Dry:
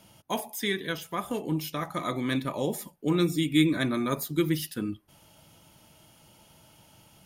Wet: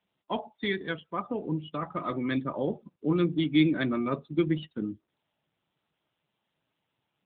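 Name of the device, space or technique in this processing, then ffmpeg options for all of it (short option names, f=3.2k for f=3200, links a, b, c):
mobile call with aggressive noise cancelling: -filter_complex "[0:a]asettb=1/sr,asplit=3[a][b][c];[a]atrim=end=0.964[d];[b]atrim=start=0.96:end=1.5,asetpts=PTS-STARTPTS,afade=t=in:d=0.004:c=qsin,afade=t=out:st=0.536:d=0.004:c=qsin,lowpass=f=5.8k:w=0.5412,lowpass=f=5.8k:w=1.3066[e];[c]atrim=start=1.496[f];[d][e]acrossfade=d=0.004:c1=hsin:c2=qsin[g];[g][f]acrossfade=d=0.004:c1=qsin:c2=hsin,highpass=120,afftdn=nr=33:nf=-37" -ar 8000 -c:a libopencore_amrnb -b:a 10200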